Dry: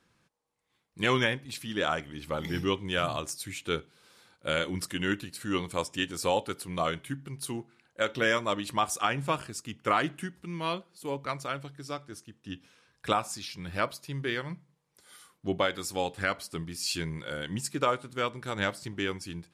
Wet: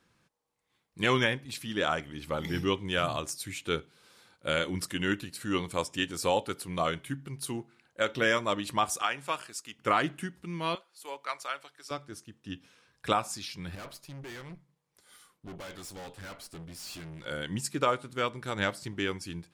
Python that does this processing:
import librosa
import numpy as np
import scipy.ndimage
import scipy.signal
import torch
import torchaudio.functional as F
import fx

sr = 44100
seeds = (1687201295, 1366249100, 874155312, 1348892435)

y = fx.highpass(x, sr, hz=900.0, slope=6, at=(9.02, 9.79))
y = fx.highpass(y, sr, hz=760.0, slope=12, at=(10.75, 11.91))
y = fx.tube_stage(y, sr, drive_db=41.0, bias=0.65, at=(13.75, 17.26))